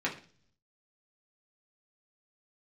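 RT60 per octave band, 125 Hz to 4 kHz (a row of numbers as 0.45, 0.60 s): 0.95, 0.70, 0.50, 0.40, 0.40, 0.50 s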